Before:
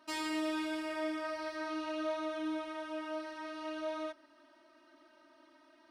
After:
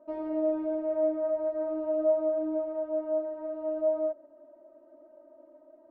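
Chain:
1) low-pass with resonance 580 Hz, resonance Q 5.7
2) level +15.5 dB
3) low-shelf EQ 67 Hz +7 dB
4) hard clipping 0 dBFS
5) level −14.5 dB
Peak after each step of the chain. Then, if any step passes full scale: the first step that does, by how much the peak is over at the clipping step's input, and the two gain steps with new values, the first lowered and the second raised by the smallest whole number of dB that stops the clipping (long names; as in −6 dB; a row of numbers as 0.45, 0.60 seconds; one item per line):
−17.5, −2.0, −2.0, −2.0, −16.5 dBFS
no step passes full scale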